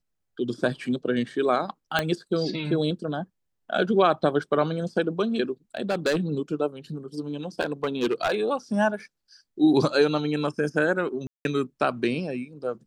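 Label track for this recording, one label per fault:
1.990000	1.990000	pop -8 dBFS
5.770000	6.170000	clipped -18.5 dBFS
7.600000	8.350000	clipped -19 dBFS
11.270000	11.450000	dropout 181 ms

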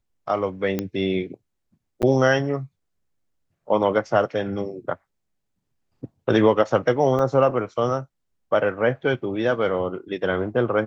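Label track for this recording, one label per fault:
0.790000	0.790000	pop -11 dBFS
2.020000	2.030000	dropout 8.6 ms
7.190000	7.190000	dropout 3.6 ms

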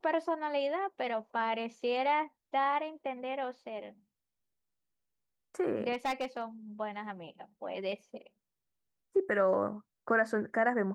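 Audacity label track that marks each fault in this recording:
5.930000	6.420000	clipped -28.5 dBFS

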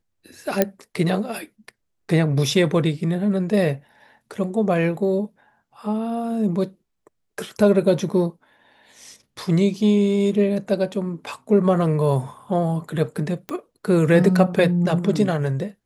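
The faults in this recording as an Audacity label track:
0.620000	0.620000	pop -3 dBFS
13.490000	13.490000	pop -15 dBFS

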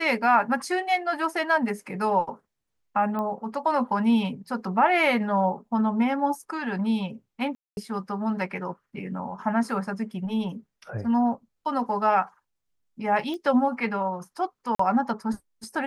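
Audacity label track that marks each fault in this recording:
3.190000	3.190000	pop -20 dBFS
7.550000	7.770000	dropout 221 ms
13.340000	13.340000	pop -23 dBFS
14.750000	14.790000	dropout 44 ms

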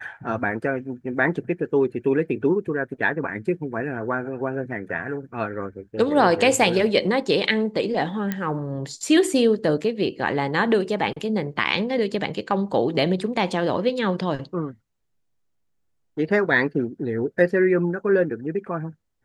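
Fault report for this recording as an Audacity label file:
8.320000	8.320000	pop -12 dBFS

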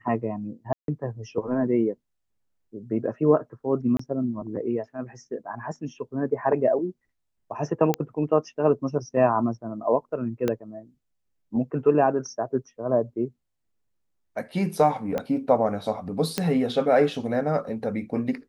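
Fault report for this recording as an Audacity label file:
0.730000	0.880000	dropout 152 ms
3.970000	3.990000	dropout 24 ms
7.940000	7.940000	pop -10 dBFS
10.480000	10.480000	pop -12 dBFS
15.180000	15.180000	pop -15 dBFS
16.380000	16.380000	pop -9 dBFS

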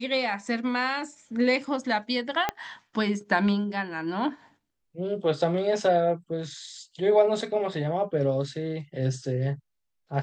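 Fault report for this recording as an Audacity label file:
2.490000	2.490000	pop -11 dBFS

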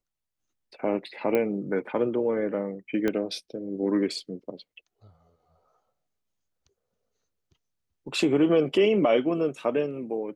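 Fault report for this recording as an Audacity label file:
1.350000	1.350000	pop -14 dBFS
3.080000	3.080000	pop -14 dBFS

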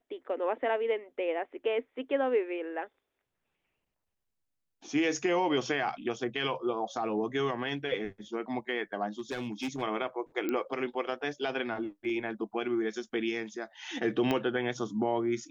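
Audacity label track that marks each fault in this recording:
9.190000	9.830000	clipped -30 dBFS
10.490000	10.490000	pop -19 dBFS
14.310000	14.310000	pop -16 dBFS

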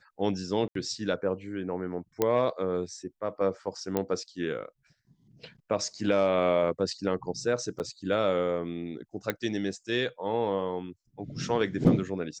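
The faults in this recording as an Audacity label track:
0.680000	0.750000	dropout 73 ms
2.220000	2.220000	pop -11 dBFS
3.970000	3.970000	pop -14 dBFS
7.790000	7.800000	dropout 8.7 ms
9.300000	9.300000	pop -14 dBFS

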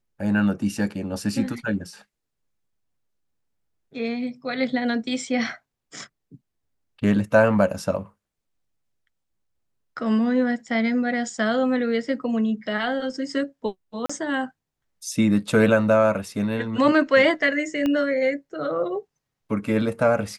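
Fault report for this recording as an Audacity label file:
14.060000	14.100000	dropout 35 ms
17.860000	17.860000	pop -13 dBFS

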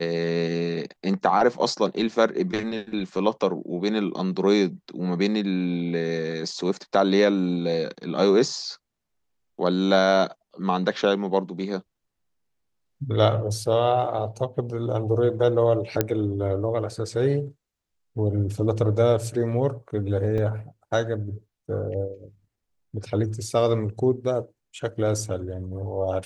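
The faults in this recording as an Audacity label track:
16.010000	16.010000	pop -6 dBFS
20.380000	20.380000	dropout 3.3 ms

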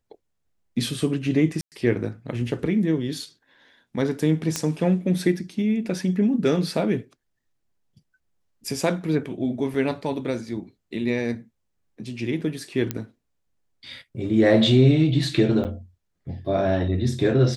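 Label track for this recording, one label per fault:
1.610000	1.720000	dropout 108 ms
4.560000	4.560000	pop -9 dBFS
9.740000	9.740000	dropout 2.7 ms
12.910000	12.910000	pop -10 dBFS
15.640000	15.650000	dropout 8.9 ms

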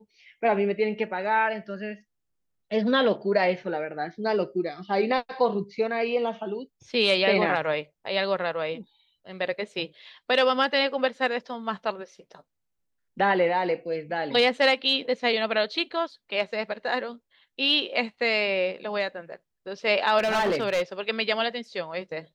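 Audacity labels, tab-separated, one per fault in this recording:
20.180000	20.820000	clipped -20.5 dBFS

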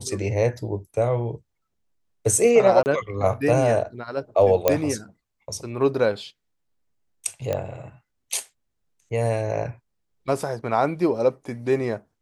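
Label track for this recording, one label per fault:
2.830000	2.860000	dropout 29 ms
4.680000	4.680000	pop -4 dBFS
7.530000	7.530000	pop -13 dBFS

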